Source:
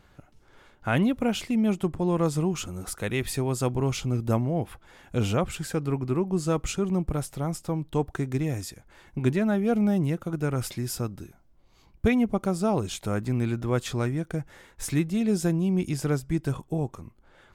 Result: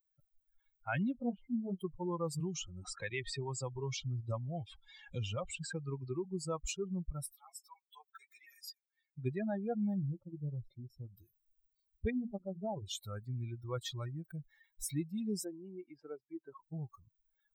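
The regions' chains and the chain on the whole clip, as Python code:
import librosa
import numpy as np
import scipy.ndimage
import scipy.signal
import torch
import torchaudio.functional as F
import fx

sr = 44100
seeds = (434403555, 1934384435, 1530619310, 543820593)

y = fx.chain(x, sr, fx.lowpass(hz=1000.0, slope=12),
    fx.doubler(ms=21.0, db=-5.0), at=(1.12, 1.81))
y = fx.chain(y, sr, fx.steep_lowpass(hz=8500.0, slope=48),
    fx.band_squash(depth_pct=70), at=(2.4, 6.25))
y = fx.chain(y, sr, fx.highpass(hz=1100.0, slope=12),
    fx.ensemble(), at=(7.33, 9.18))
y = fx.chain(y, sr, fx.moving_average(points=28),
    fx.doubler(ms=21.0, db=-13.0), at=(9.94, 11.17))
y = fx.chain(y, sr, fx.gaussian_blur(sigma=8.7),
    fx.hum_notches(base_hz=60, count=6), at=(12.1, 12.86))
y = fx.chain(y, sr, fx.bandpass_edges(low_hz=320.0, high_hz=2800.0),
    fx.high_shelf(hz=2000.0, db=-7.5), at=(15.44, 16.62))
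y = fx.bin_expand(y, sr, power=3.0)
y = fx.env_flatten(y, sr, amount_pct=50)
y = F.gain(torch.from_numpy(y), -8.5).numpy()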